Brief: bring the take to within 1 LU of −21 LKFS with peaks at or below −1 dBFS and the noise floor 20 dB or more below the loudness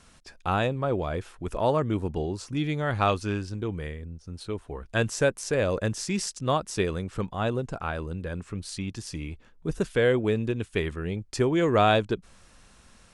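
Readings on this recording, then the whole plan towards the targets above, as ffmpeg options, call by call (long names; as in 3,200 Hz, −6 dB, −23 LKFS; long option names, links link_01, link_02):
integrated loudness −28.0 LKFS; sample peak −8.5 dBFS; target loudness −21.0 LKFS
→ -af "volume=7dB"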